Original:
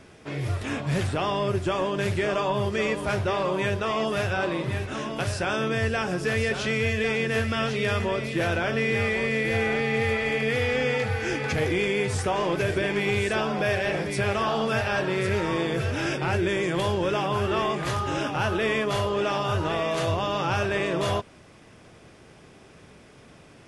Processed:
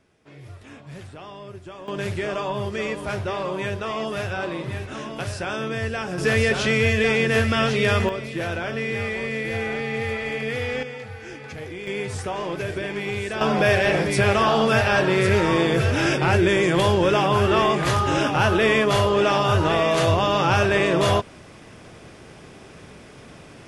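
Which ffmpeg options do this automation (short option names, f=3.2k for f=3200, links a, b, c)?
-af "asetnsamples=n=441:p=0,asendcmd='1.88 volume volume -1.5dB;6.18 volume volume 5.5dB;8.09 volume volume -2dB;10.83 volume volume -10dB;11.87 volume volume -3dB;13.41 volume volume 6.5dB',volume=-13.5dB"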